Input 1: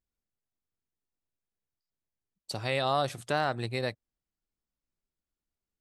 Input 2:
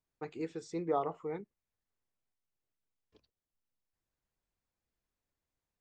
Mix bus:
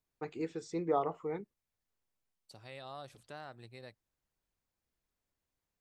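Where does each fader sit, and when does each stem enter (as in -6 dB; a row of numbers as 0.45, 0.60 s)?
-19.0, +1.0 dB; 0.00, 0.00 s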